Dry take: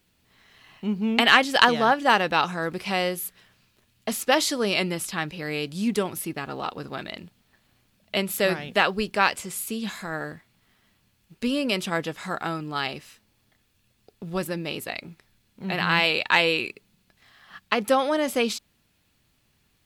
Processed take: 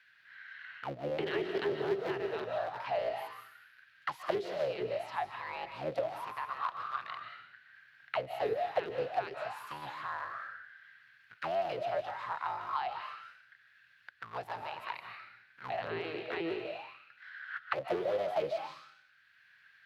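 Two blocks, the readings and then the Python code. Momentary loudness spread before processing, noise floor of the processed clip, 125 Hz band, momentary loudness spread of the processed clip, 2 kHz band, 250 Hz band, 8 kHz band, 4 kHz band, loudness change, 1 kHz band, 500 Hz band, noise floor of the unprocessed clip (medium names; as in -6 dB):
15 LU, -65 dBFS, -15.5 dB, 16 LU, -16.5 dB, -17.0 dB, under -25 dB, -20.5 dB, -12.5 dB, -10.5 dB, -7.0 dB, -68 dBFS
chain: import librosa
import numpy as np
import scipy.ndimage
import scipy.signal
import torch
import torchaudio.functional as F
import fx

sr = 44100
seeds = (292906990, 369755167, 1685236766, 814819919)

y = fx.cycle_switch(x, sr, every=3, mode='inverted')
y = fx.graphic_eq(y, sr, hz=(125, 250, 500, 1000, 2000, 4000, 8000), db=(10, -7, -6, -5, 4, 5, -10))
y = fx.rev_freeverb(y, sr, rt60_s=0.68, hf_ratio=1.0, predelay_ms=105, drr_db=6.0)
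y = fx.auto_wah(y, sr, base_hz=400.0, top_hz=1600.0, q=13.0, full_db=-17.5, direction='down')
y = fx.high_shelf(y, sr, hz=4000.0, db=10.0)
y = fx.band_squash(y, sr, depth_pct=40)
y = y * 10.0 ** (9.0 / 20.0)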